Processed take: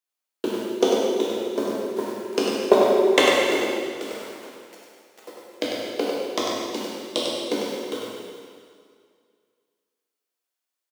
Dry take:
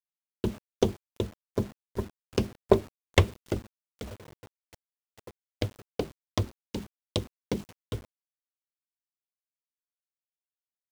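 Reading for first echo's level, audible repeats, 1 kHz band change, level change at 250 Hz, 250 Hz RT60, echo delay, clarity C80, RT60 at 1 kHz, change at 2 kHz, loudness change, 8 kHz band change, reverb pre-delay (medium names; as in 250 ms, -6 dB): -4.0 dB, 1, +11.5 dB, +7.5 dB, 2.0 s, 98 ms, -1.5 dB, 2.1 s, +11.5 dB, +8.5 dB, +11.0 dB, 5 ms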